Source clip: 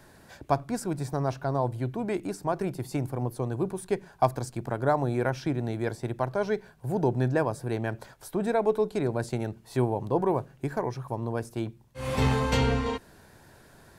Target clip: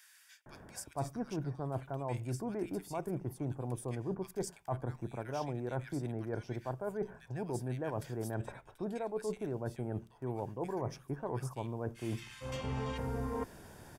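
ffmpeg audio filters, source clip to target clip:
ffmpeg -i in.wav -filter_complex "[0:a]bandreject=frequency=4100:width=5.7,areverse,acompressor=threshold=-35dB:ratio=12,areverse,acrossover=split=1700[link_01][link_02];[link_01]adelay=460[link_03];[link_03][link_02]amix=inputs=2:normalize=0,volume=1.5dB" out.wav

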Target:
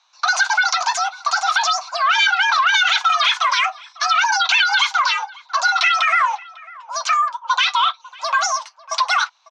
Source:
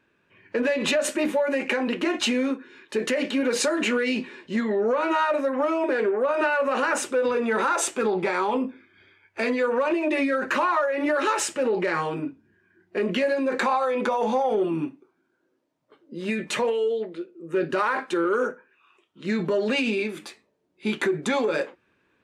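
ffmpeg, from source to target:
ffmpeg -i in.wav -filter_complex "[0:a]highpass=frequency=300:width_type=q:width=0.5412,highpass=frequency=300:width_type=q:width=1.307,lowpass=frequency=2600:width_type=q:width=0.5176,lowpass=frequency=2600:width_type=q:width=0.7071,lowpass=frequency=2600:width_type=q:width=1.932,afreqshift=63,asplit=2[link_01][link_02];[link_02]adelay=1283,volume=-21dB,highshelf=frequency=4000:gain=-28.9[link_03];[link_01][link_03]amix=inputs=2:normalize=0,asetrate=103194,aresample=44100,volume=7.5dB" out.wav

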